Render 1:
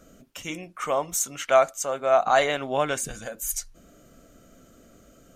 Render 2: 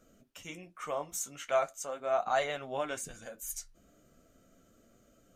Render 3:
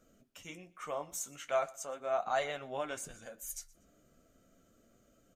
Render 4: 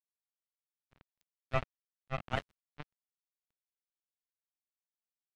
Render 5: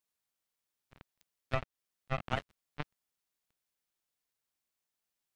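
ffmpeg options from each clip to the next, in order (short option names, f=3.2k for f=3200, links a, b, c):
-af "flanger=delay=8.2:depth=6.8:regen=-45:speed=0.4:shape=triangular,volume=-6.5dB"
-af "aecho=1:1:120|240:0.0708|0.0219,volume=-3dB"
-af "acrusher=bits=3:mix=0:aa=0.5,bass=f=250:g=12,treble=f=4k:g=-13"
-af "acompressor=threshold=-37dB:ratio=6,volume=8dB"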